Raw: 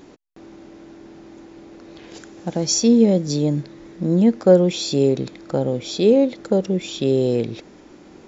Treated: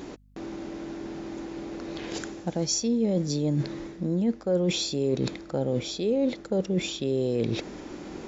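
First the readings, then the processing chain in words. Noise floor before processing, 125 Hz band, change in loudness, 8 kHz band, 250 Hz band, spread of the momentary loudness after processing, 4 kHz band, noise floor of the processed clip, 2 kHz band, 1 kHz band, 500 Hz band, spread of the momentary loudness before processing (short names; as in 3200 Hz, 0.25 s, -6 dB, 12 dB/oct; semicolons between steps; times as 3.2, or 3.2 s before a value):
-46 dBFS, -6.0 dB, -9.5 dB, n/a, -8.5 dB, 12 LU, -4.5 dB, -44 dBFS, -2.0 dB, -7.0 dB, -9.5 dB, 13 LU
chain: reverse; compressor 5:1, threshold -30 dBFS, peak gain reduction 20 dB; reverse; hum 50 Hz, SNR 29 dB; gain +5.5 dB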